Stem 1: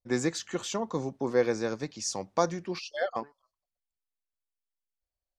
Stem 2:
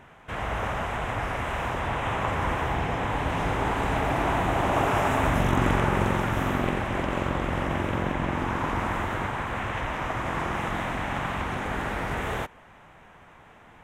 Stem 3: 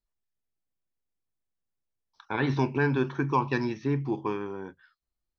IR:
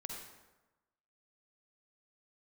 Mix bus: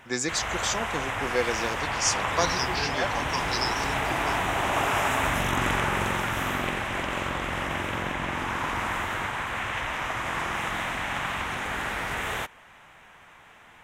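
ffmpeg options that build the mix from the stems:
-filter_complex "[0:a]volume=2dB[a];[1:a]volume=0dB[b];[2:a]highshelf=f=3.5k:t=q:w=3:g=13.5,volume=-7dB[c];[a][b][c]amix=inputs=3:normalize=0,tiltshelf=f=1.1k:g=-6.5"

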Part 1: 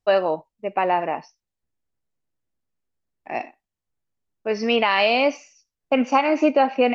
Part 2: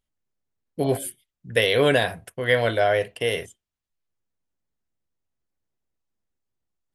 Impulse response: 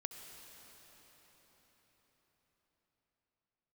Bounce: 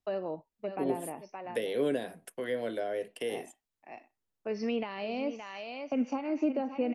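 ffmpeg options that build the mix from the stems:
-filter_complex "[0:a]volume=-7.5dB,asplit=2[a][b];[b]volume=-12dB[c];[1:a]highpass=f=210:w=0.5412,highpass=f=210:w=1.3066,adynamicequalizer=threshold=0.0126:dfrequency=5800:dqfactor=0.7:tfrequency=5800:tqfactor=0.7:attack=5:release=100:ratio=0.375:range=3:mode=boostabove:tftype=highshelf,volume=-4.5dB[d];[c]aecho=0:1:569:1[e];[a][d][e]amix=inputs=3:normalize=0,acrossover=split=430[f][g];[g]acompressor=threshold=-39dB:ratio=10[h];[f][h]amix=inputs=2:normalize=0"

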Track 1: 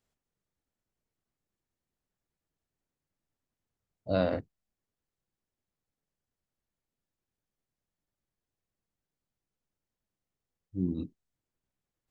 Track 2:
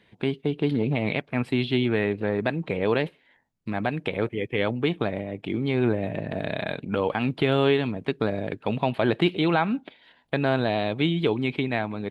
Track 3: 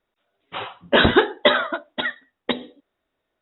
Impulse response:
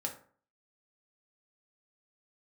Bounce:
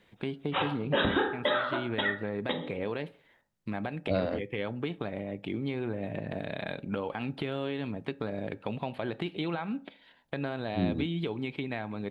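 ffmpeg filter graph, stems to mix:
-filter_complex "[0:a]volume=1.5dB[a];[1:a]alimiter=limit=-13.5dB:level=0:latency=1:release=208,volume=-5dB,asplit=3[b][c][d];[c]volume=-15.5dB[e];[2:a]volume=2dB,asplit=2[f][g];[g]volume=-6dB[h];[d]apad=whole_len=150470[i];[f][i]sidechaincompress=threshold=-40dB:ratio=8:attack=16:release=116[j];[b][j]amix=inputs=2:normalize=0,acompressor=threshold=-31dB:ratio=6,volume=0dB[k];[3:a]atrim=start_sample=2205[l];[e][h]amix=inputs=2:normalize=0[m];[m][l]afir=irnorm=-1:irlink=0[n];[a][k][n]amix=inputs=3:normalize=0,alimiter=limit=-16.5dB:level=0:latency=1:release=344"

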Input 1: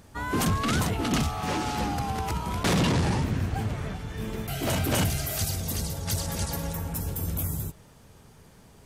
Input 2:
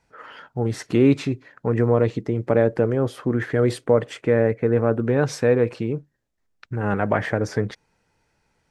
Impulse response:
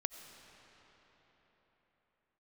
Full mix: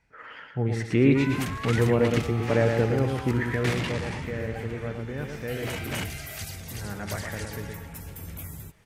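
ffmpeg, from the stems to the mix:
-filter_complex "[0:a]adelay=1000,volume=-9dB[a];[1:a]deesser=0.7,lowshelf=f=230:g=9,volume=-8dB,afade=t=out:st=3.24:d=0.68:silence=0.281838,asplit=2[b][c];[c]volume=-4.5dB,aecho=0:1:115|230|345|460:1|0.29|0.0841|0.0244[d];[a][b][d]amix=inputs=3:normalize=0,equalizer=f=2.1k:w=1.4:g=10.5"

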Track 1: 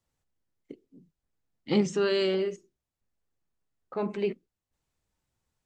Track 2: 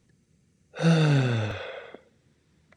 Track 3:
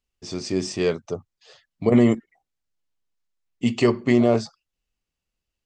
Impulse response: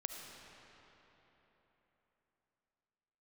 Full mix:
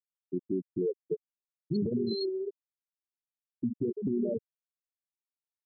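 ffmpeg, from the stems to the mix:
-filter_complex "[0:a]equalizer=f=125:t=o:w=1:g=9,equalizer=f=250:t=o:w=1:g=-5,equalizer=f=500:t=o:w=1:g=-3,equalizer=f=1k:t=o:w=1:g=-4,equalizer=f=2k:t=o:w=1:g=-10,equalizer=f=4k:t=o:w=1:g=11,volume=-1dB,asplit=2[a][b];[b]volume=-8.5dB[c];[1:a]highpass=1.1k,volume=-18.5dB[d];[2:a]acompressor=threshold=-22dB:ratio=12,volume=1.5dB[e];[3:a]atrim=start_sample=2205[f];[c][f]afir=irnorm=-1:irlink=0[g];[a][d][e][g]amix=inputs=4:normalize=0,afftfilt=real='re*gte(hypot(re,im),0.251)':imag='im*gte(hypot(re,im),0.251)':win_size=1024:overlap=0.75,alimiter=limit=-22.5dB:level=0:latency=1:release=126"

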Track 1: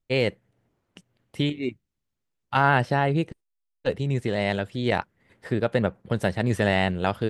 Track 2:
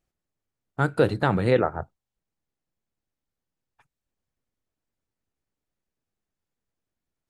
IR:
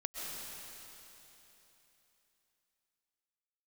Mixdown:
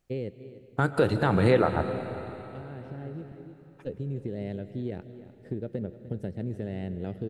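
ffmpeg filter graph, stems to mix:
-filter_complex "[0:a]firequalizer=gain_entry='entry(400,0);entry(960,-24);entry(1500,-17)':delay=0.05:min_phase=1,acompressor=threshold=-26dB:ratio=6,volume=-4.5dB,asplit=3[a][b][c];[b]volume=-12dB[d];[c]volume=-14.5dB[e];[1:a]alimiter=limit=-15.5dB:level=0:latency=1:release=196,volume=2dB,asplit=3[f][g][h];[g]volume=-6dB[i];[h]apad=whole_len=326147[j];[a][j]sidechaincompress=threshold=-43dB:ratio=8:attack=16:release=1430[k];[2:a]atrim=start_sample=2205[l];[d][i]amix=inputs=2:normalize=0[m];[m][l]afir=irnorm=-1:irlink=0[n];[e]aecho=0:1:300:1[o];[k][f][n][o]amix=inputs=4:normalize=0"

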